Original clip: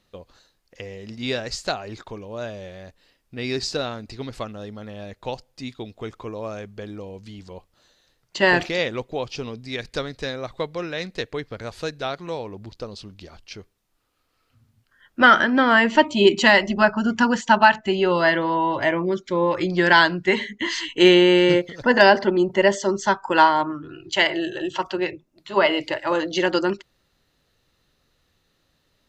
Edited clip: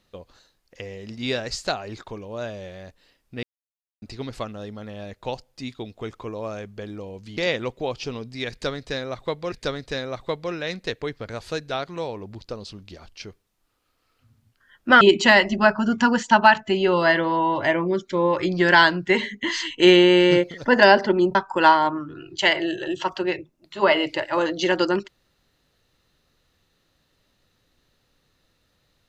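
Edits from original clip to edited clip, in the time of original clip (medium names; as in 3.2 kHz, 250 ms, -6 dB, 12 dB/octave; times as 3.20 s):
3.43–4.02 s: mute
7.37–8.69 s: delete
9.83–10.84 s: loop, 2 plays
15.32–16.19 s: delete
22.53–23.09 s: delete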